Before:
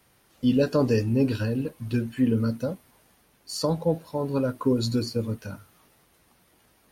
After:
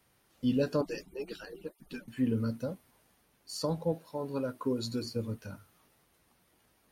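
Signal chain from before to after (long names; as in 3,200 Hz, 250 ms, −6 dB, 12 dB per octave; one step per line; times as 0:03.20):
0:00.81–0:02.08: harmonic-percussive split with one part muted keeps percussive
0:03.92–0:05.05: low-shelf EQ 120 Hz −11.5 dB
level −7 dB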